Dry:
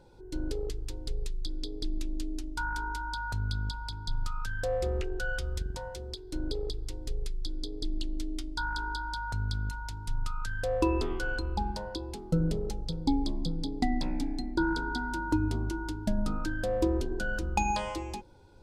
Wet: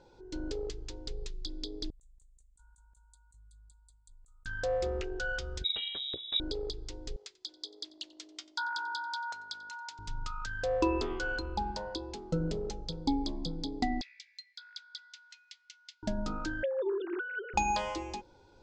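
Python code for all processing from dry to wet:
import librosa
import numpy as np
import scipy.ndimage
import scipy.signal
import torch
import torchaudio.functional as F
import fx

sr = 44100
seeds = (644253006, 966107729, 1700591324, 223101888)

y = fx.chain(x, sr, fx.cheby2_bandstop(low_hz=130.0, high_hz=5600.0, order=4, stop_db=40),
    fx.tilt_eq(slope=4.0),
    fx.over_compress(threshold_db=-49.0, ratio=-1.0), at=(1.9, 4.46))
y = fx.chain(y, sr, fx.high_shelf(hz=2700.0, db=10.0),
    fx.freq_invert(carrier_hz=3800), at=(5.64, 6.4))
y = fx.chain(y, sr, fx.highpass(hz=730.0, slope=12),
    fx.echo_single(ms=91, db=-21.5), at=(7.16, 9.99))
y = fx.chain(y, sr, fx.ellip_highpass(hz=2000.0, order=4, stop_db=70),
    fx.air_absorb(metres=78.0), at=(14.01, 16.03))
y = fx.chain(y, sr, fx.sine_speech(),
    fx.highpass(hz=340.0, slope=12),
    fx.over_compress(threshold_db=-31.0, ratio=-0.5), at=(16.63, 17.54))
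y = scipy.signal.sosfilt(scipy.signal.butter(8, 7400.0, 'lowpass', fs=sr, output='sos'), y)
y = fx.bass_treble(y, sr, bass_db=-7, treble_db=1)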